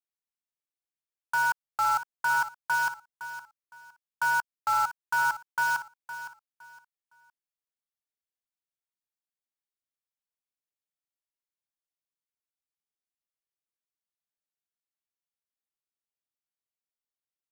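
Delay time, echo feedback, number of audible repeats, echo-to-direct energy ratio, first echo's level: 512 ms, 25%, 2, −12.0 dB, −12.5 dB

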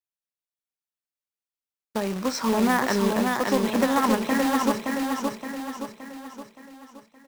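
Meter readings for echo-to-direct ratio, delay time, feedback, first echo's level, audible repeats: −2.5 dB, 570 ms, 48%, −3.5 dB, 5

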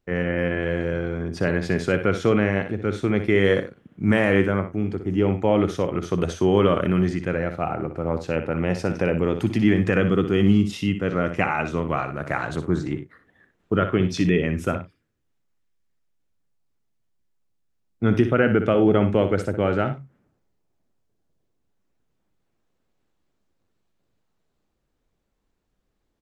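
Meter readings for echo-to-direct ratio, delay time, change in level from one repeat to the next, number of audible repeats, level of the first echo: −9.0 dB, 61 ms, repeats not evenly spaced, 2, −9.5 dB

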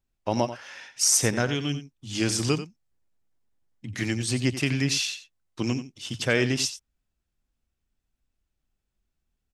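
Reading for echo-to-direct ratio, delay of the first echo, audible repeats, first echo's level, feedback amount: −12.5 dB, 89 ms, 1, −12.5 dB, repeats not evenly spaced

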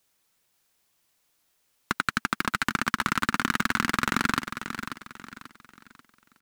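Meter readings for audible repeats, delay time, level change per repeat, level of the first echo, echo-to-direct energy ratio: 3, 538 ms, −9.0 dB, −9.5 dB, −9.0 dB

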